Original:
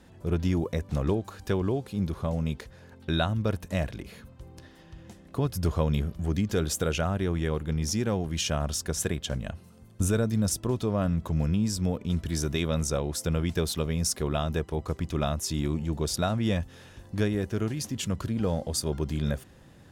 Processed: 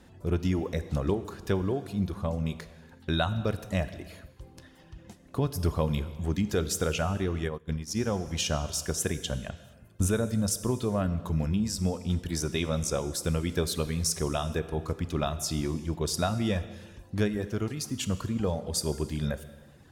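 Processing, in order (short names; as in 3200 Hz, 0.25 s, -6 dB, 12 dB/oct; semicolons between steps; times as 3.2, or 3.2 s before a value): reverb removal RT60 0.82 s; non-linear reverb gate 0.49 s falling, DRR 11 dB; 7.48–7.97 upward expander 2.5:1, over -38 dBFS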